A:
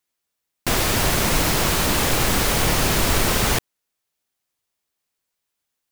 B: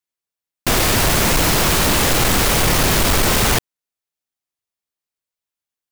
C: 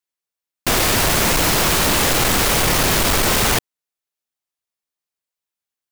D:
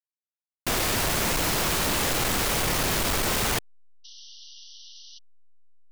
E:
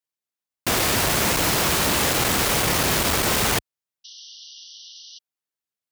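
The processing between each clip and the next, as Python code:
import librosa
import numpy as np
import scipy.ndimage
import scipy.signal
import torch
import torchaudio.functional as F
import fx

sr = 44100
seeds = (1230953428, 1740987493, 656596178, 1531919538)

y1 = fx.leveller(x, sr, passes=3)
y1 = F.gain(torch.from_numpy(y1), -3.5).numpy()
y2 = fx.low_shelf(y1, sr, hz=230.0, db=-4.0)
y3 = fx.delta_hold(y2, sr, step_db=-36.5)
y3 = fx.spec_paint(y3, sr, seeds[0], shape='noise', start_s=4.04, length_s=1.15, low_hz=2800.0, high_hz=6100.0, level_db=-39.0)
y3 = F.gain(torch.from_numpy(y3), -8.5).numpy()
y4 = scipy.signal.sosfilt(scipy.signal.butter(2, 54.0, 'highpass', fs=sr, output='sos'), y3)
y4 = F.gain(torch.from_numpy(y4), 4.5).numpy()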